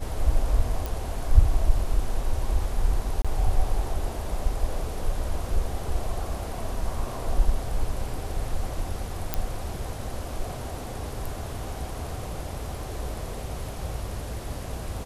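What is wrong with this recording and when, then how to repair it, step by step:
0.86 pop
3.22–3.25 gap 26 ms
9.34 pop -9 dBFS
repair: de-click; interpolate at 3.22, 26 ms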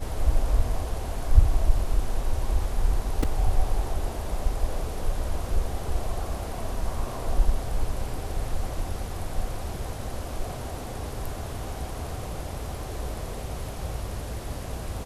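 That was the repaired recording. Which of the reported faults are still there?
none

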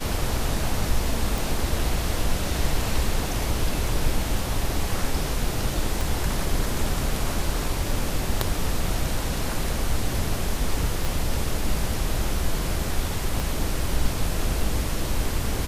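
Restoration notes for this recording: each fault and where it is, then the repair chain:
1.38 pop
6.01 pop
11.05 pop
13.4 pop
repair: de-click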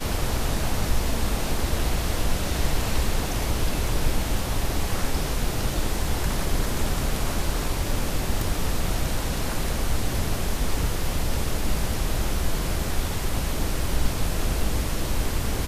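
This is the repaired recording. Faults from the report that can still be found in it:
6.01 pop
11.05 pop
13.4 pop

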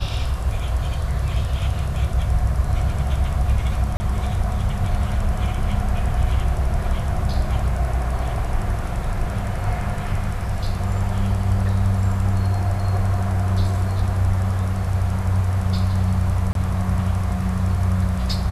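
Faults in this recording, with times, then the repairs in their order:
3.97–4 gap 30 ms
16.53–16.55 gap 22 ms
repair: interpolate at 3.97, 30 ms; interpolate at 16.53, 22 ms

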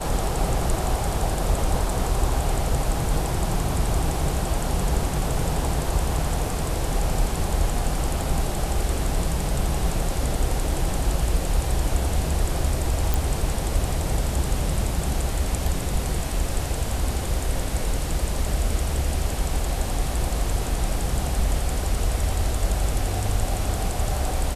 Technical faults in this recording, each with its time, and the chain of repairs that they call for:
13.14 pop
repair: de-click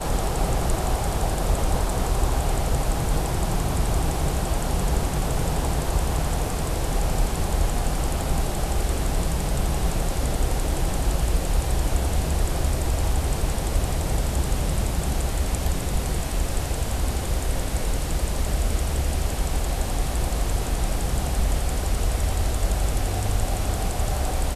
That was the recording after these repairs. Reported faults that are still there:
none

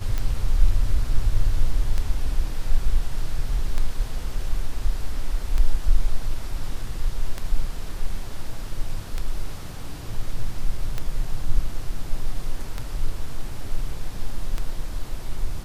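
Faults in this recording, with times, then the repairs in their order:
tick 33 1/3 rpm -13 dBFS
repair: de-click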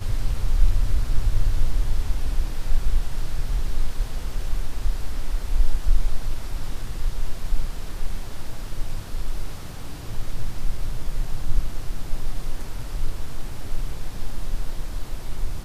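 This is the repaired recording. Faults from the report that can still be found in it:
none

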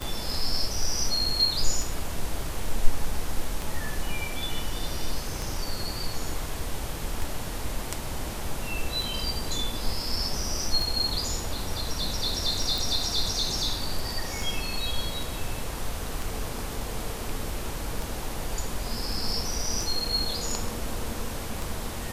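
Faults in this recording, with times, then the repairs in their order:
tick 33 1/3 rpm
12.78 pop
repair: de-click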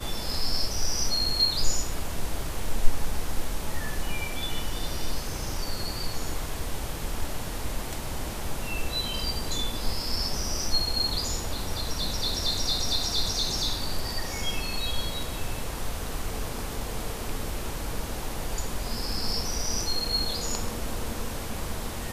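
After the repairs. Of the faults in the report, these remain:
none

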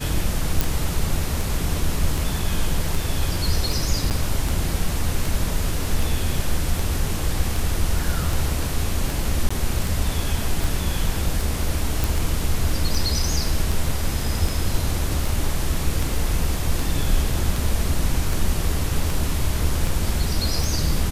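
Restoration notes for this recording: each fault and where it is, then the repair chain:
tick 78 rpm
0.61 pop
4.1–4.11 gap 8.8 ms
9.49–9.51 gap 15 ms
12.04 pop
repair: de-click; interpolate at 4.1, 8.8 ms; interpolate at 9.49, 15 ms

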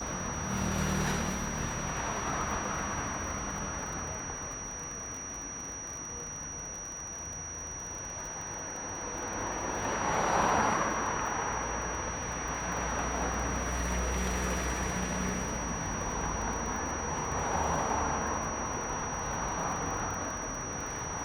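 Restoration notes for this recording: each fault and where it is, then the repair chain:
crackle 37/s -37 dBFS
tone 5800 Hz -39 dBFS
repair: de-click; notch 5800 Hz, Q 30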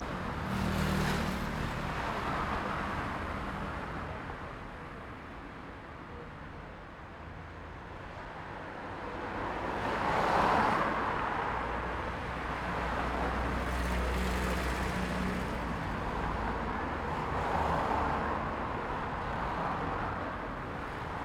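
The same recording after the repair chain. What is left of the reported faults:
none

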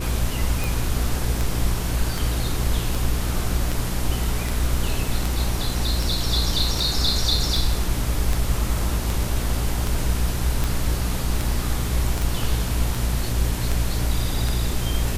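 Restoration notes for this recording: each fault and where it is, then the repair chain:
hum 60 Hz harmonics 7 -26 dBFS
tick 78 rpm
12.22 pop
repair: de-click; de-hum 60 Hz, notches 7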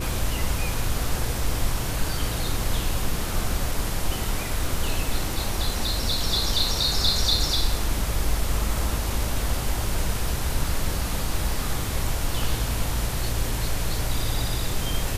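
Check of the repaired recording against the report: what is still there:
none

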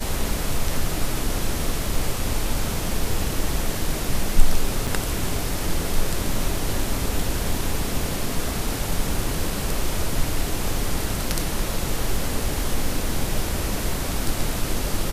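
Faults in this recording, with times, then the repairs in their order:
4.87–4.88 gap 5.8 ms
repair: interpolate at 4.87, 5.8 ms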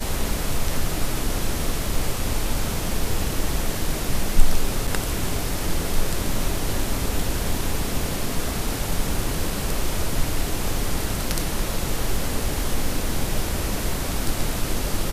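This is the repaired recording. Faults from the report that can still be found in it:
none

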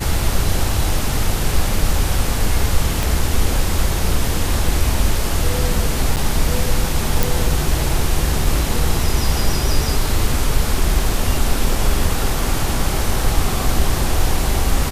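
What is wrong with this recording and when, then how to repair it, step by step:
3.03 pop
6.16–6.17 gap 8.4 ms
7.23 pop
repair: de-click; interpolate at 6.16, 8.4 ms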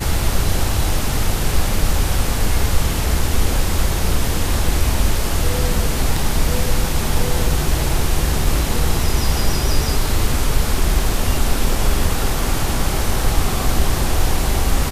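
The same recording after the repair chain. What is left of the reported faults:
3.03 pop

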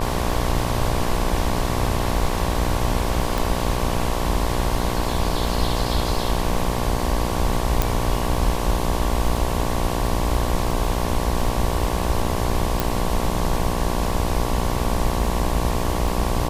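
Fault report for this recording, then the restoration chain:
buzz 60 Hz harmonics 19 -26 dBFS
crackle 21/s -28 dBFS
3.38 pop
7.82 pop
12.8 pop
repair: de-click; de-hum 60 Hz, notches 19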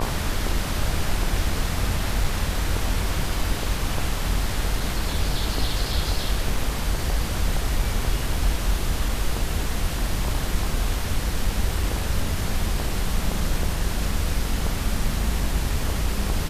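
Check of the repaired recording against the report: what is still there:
3.38 pop
7.82 pop

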